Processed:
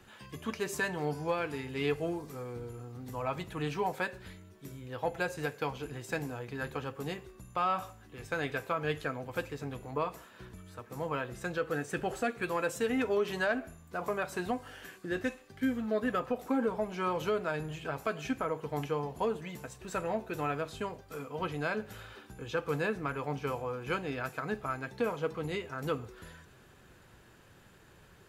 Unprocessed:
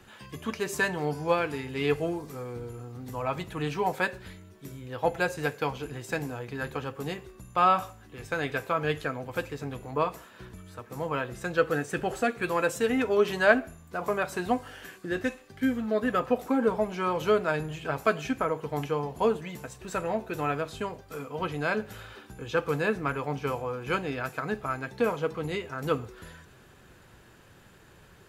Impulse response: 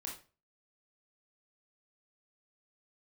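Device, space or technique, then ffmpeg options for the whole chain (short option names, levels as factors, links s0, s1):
soft clipper into limiter: -af "asoftclip=type=tanh:threshold=0.316,alimiter=limit=0.126:level=0:latency=1:release=179,volume=0.668"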